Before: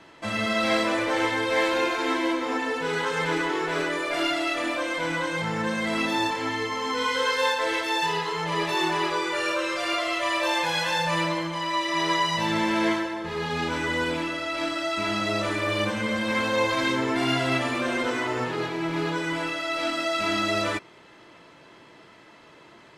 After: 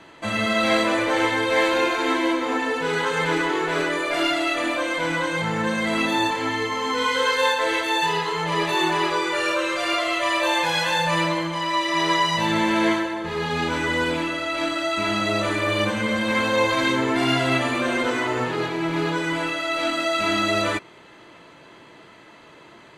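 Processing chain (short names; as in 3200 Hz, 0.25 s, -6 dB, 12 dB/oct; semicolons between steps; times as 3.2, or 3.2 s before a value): notch 5300 Hz, Q 9.1; gain +3.5 dB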